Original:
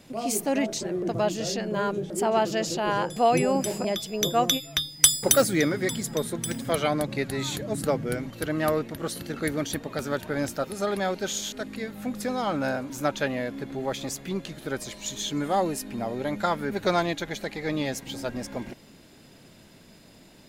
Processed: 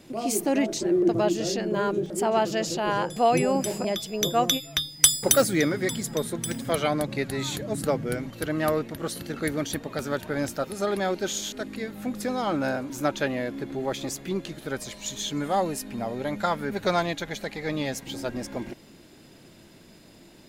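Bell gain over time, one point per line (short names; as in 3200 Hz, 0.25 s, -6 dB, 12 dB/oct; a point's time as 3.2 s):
bell 340 Hz 0.28 oct
+11.5 dB
from 2.06 s +0.5 dB
from 10.8 s +7 dB
from 14.6 s -3.5 dB
from 18.07 s +6 dB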